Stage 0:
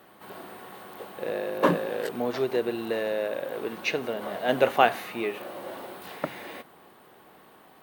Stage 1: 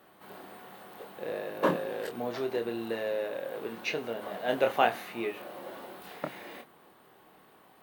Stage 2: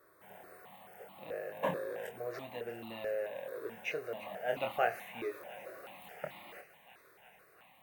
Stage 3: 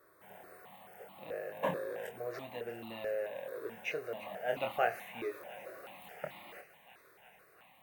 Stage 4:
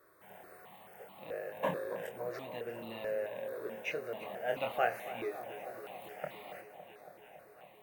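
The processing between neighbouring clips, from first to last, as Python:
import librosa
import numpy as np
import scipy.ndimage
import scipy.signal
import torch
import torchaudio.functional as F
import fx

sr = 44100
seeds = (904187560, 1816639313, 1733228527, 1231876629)

y1 = fx.doubler(x, sr, ms=26.0, db=-6.5)
y1 = y1 * librosa.db_to_amplitude(-5.5)
y2 = fx.echo_wet_highpass(y1, sr, ms=346, feedback_pct=81, hz=1600.0, wet_db=-15.0)
y2 = fx.phaser_held(y2, sr, hz=4.6, low_hz=800.0, high_hz=1600.0)
y2 = y2 * librosa.db_to_amplitude(-3.5)
y3 = y2
y4 = fx.echo_bbd(y3, sr, ms=279, stages=2048, feedback_pct=80, wet_db=-13.0)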